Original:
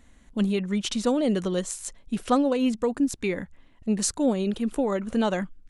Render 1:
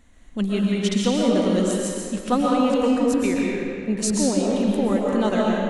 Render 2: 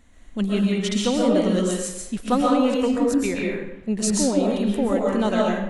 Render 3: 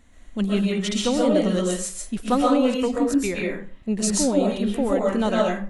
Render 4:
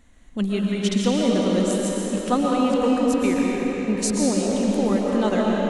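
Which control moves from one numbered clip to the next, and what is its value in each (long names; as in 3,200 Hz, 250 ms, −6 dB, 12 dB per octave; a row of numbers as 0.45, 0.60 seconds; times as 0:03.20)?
comb and all-pass reverb, RT60: 2.3, 0.86, 0.4, 4.9 seconds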